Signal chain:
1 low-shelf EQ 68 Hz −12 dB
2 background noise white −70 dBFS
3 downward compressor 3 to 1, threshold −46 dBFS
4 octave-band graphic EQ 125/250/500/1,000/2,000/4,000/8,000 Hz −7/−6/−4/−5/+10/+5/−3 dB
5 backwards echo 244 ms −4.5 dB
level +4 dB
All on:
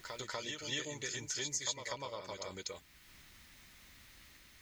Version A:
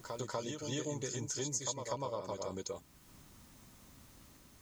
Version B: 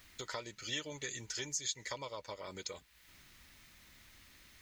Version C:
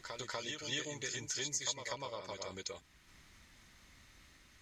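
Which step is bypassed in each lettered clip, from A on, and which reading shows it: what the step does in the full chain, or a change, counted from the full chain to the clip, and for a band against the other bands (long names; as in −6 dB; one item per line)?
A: 4, 2 kHz band −12.0 dB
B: 5, change in integrated loudness −1.5 LU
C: 2, change in momentary loudness spread −12 LU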